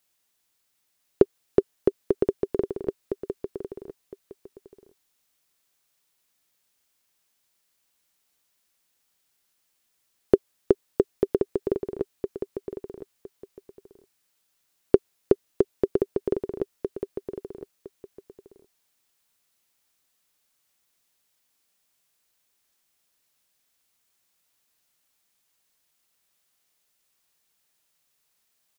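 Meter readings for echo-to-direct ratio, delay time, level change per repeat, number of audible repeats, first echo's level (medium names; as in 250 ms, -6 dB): -7.0 dB, 1011 ms, -13.5 dB, 2, -7.0 dB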